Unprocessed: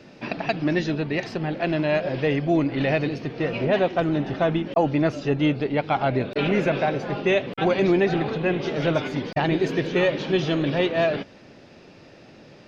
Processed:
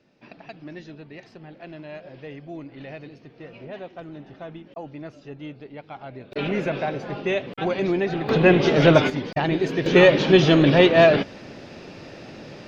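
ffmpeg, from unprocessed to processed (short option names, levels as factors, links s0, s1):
-af "asetnsamples=n=441:p=0,asendcmd='6.32 volume volume -3.5dB;8.29 volume volume 8dB;9.1 volume volume -0.5dB;9.86 volume volume 7.5dB',volume=0.158"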